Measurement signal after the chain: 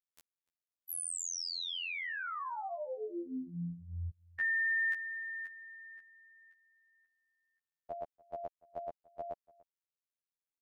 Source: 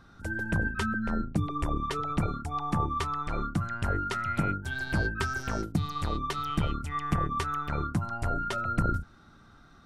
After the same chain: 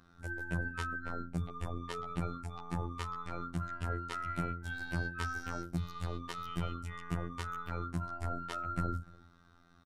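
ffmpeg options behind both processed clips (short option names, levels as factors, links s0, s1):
-filter_complex "[0:a]asplit=2[s0][s1];[s1]adelay=291.5,volume=0.0708,highshelf=f=4000:g=-6.56[s2];[s0][s2]amix=inputs=2:normalize=0,afftfilt=real='hypot(re,im)*cos(PI*b)':imag='0':win_size=2048:overlap=0.75,volume=0.596"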